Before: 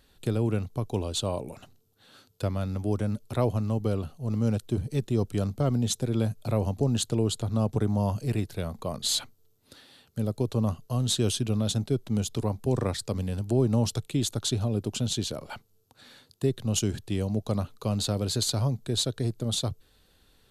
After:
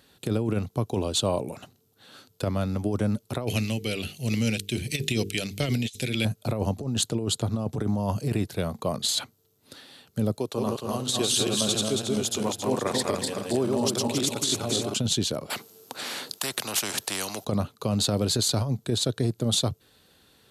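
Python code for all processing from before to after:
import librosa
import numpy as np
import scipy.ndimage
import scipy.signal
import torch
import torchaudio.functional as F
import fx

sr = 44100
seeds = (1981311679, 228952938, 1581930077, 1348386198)

y = fx.chain(x, sr, fx.tremolo(hz=1.3, depth=0.52),
    fx.high_shelf_res(hz=1600.0, db=13.0, q=3.0),
    fx.hum_notches(base_hz=50, count=9), at=(3.47, 6.25))
y = fx.chain(y, sr, fx.reverse_delay_fb(ms=137, feedback_pct=63, wet_db=-1.5),
    fx.highpass(hz=570.0, slope=6), at=(10.38, 14.94))
y = fx.chain(y, sr, fx.highpass(hz=270.0, slope=12),
    fx.spectral_comp(ratio=4.0), at=(15.5, 17.45))
y = scipy.signal.sosfilt(scipy.signal.butter(2, 110.0, 'highpass', fs=sr, output='sos'), y)
y = fx.over_compress(y, sr, threshold_db=-28.0, ratio=-0.5)
y = y * librosa.db_to_amplitude(4.0)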